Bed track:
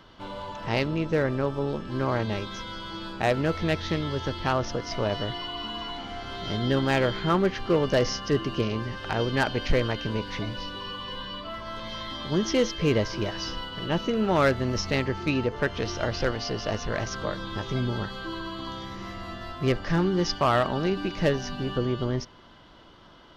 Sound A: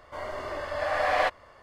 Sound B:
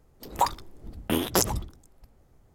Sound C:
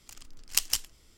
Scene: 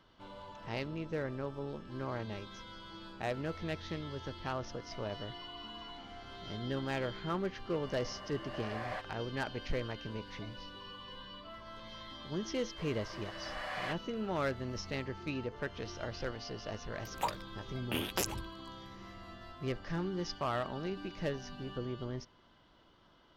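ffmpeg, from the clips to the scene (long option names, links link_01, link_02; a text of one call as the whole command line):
ffmpeg -i bed.wav -i cue0.wav -i cue1.wav -filter_complex "[1:a]asplit=2[link_01][link_02];[0:a]volume=-12.5dB[link_03];[link_02]tiltshelf=frequency=670:gain=-7.5[link_04];[2:a]equalizer=frequency=2600:width_type=o:width=0.77:gain=11.5[link_05];[link_01]atrim=end=1.62,asetpts=PTS-STARTPTS,volume=-16.5dB,afade=type=in:duration=0.004:curve=hsin,afade=type=out:start_time=1.616:duration=0.004:curve=hsin,adelay=7720[link_06];[link_04]atrim=end=1.62,asetpts=PTS-STARTPTS,volume=-17.5dB,afade=type=in:duration=0.004:curve=hsin,afade=type=out:start_time=1.616:duration=0.004:curve=hsin,adelay=12640[link_07];[link_05]atrim=end=2.54,asetpts=PTS-STARTPTS,volume=-12dB,afade=type=in:duration=0.004:curve=hsin,afade=type=out:start_time=2.536:duration=0.004:curve=hsin,adelay=16820[link_08];[link_03][link_06][link_07][link_08]amix=inputs=4:normalize=0" out.wav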